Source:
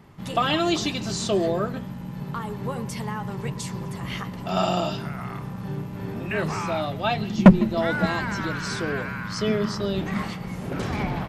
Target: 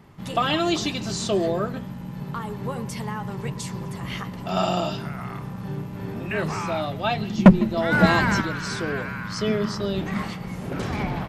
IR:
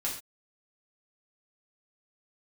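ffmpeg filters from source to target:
-filter_complex "[0:a]asplit=3[a][b][c];[a]afade=t=out:st=7.91:d=0.02[d];[b]acontrast=83,afade=t=in:st=7.91:d=0.02,afade=t=out:st=8.4:d=0.02[e];[c]afade=t=in:st=8.4:d=0.02[f];[d][e][f]amix=inputs=3:normalize=0"

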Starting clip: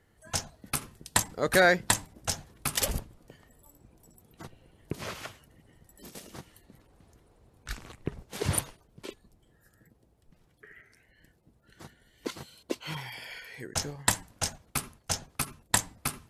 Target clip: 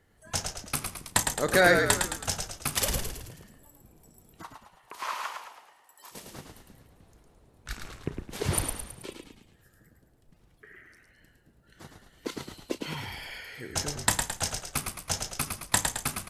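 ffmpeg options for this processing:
-filter_complex "[0:a]asplit=3[a][b][c];[a]afade=t=out:st=4.42:d=0.02[d];[b]highpass=f=1k:t=q:w=4.5,afade=t=in:st=4.42:d=0.02,afade=t=out:st=6.11:d=0.02[e];[c]afade=t=in:st=6.11:d=0.02[f];[d][e][f]amix=inputs=3:normalize=0,asplit=2[g][h];[h]adelay=34,volume=-14dB[i];[g][i]amix=inputs=2:normalize=0,asplit=7[j][k][l][m][n][o][p];[k]adelay=108,afreqshift=-52,volume=-5dB[q];[l]adelay=216,afreqshift=-104,volume=-11dB[r];[m]adelay=324,afreqshift=-156,volume=-17dB[s];[n]adelay=432,afreqshift=-208,volume=-23.1dB[t];[o]adelay=540,afreqshift=-260,volume=-29.1dB[u];[p]adelay=648,afreqshift=-312,volume=-35.1dB[v];[j][q][r][s][t][u][v]amix=inputs=7:normalize=0"

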